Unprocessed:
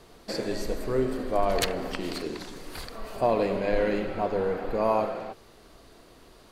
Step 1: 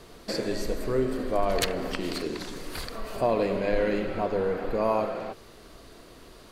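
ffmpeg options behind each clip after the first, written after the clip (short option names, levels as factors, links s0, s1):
-filter_complex "[0:a]equalizer=f=810:t=o:w=0.4:g=-3.5,asplit=2[s0][s1];[s1]acompressor=threshold=0.0178:ratio=6,volume=0.891[s2];[s0][s2]amix=inputs=2:normalize=0,volume=0.841"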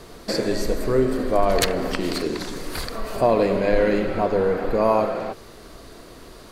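-af "equalizer=f=2900:t=o:w=0.65:g=-3,volume=2.11"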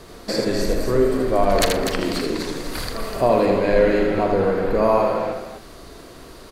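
-filter_complex "[0:a]asplit=2[s0][s1];[s1]adelay=41,volume=0.224[s2];[s0][s2]amix=inputs=2:normalize=0,asplit=2[s3][s4];[s4]aecho=0:1:80|247:0.562|0.422[s5];[s3][s5]amix=inputs=2:normalize=0"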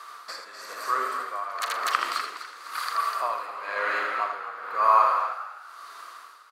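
-filter_complex "[0:a]highpass=f=1200:t=q:w=6.9,tremolo=f=1:d=0.8,asplit=4[s0][s1][s2][s3];[s1]adelay=251,afreqshift=88,volume=0.2[s4];[s2]adelay=502,afreqshift=176,volume=0.0617[s5];[s3]adelay=753,afreqshift=264,volume=0.0193[s6];[s0][s4][s5][s6]amix=inputs=4:normalize=0,volume=0.668"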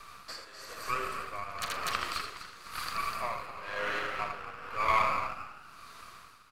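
-filter_complex "[0:a]aeval=exprs='(tanh(3.98*val(0)+0.4)-tanh(0.4))/3.98':c=same,flanger=delay=4.9:depth=4.1:regen=-72:speed=0.57:shape=triangular,acrossover=split=700|2000|2800[s0][s1][s2][s3];[s1]aeval=exprs='max(val(0),0)':c=same[s4];[s0][s4][s2][s3]amix=inputs=4:normalize=0,volume=1.26"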